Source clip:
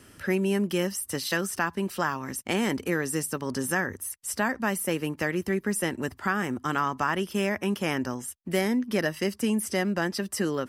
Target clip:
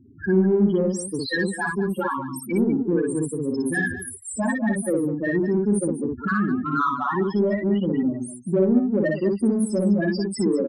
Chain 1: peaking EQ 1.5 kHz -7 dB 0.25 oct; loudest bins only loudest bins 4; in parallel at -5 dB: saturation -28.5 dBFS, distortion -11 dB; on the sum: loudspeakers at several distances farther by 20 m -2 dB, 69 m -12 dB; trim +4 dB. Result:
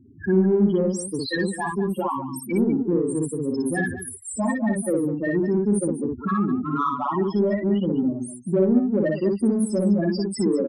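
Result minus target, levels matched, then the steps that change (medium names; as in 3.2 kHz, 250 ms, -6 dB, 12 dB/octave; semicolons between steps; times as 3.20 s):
2 kHz band -4.5 dB
remove: peaking EQ 1.5 kHz -7 dB 0.25 oct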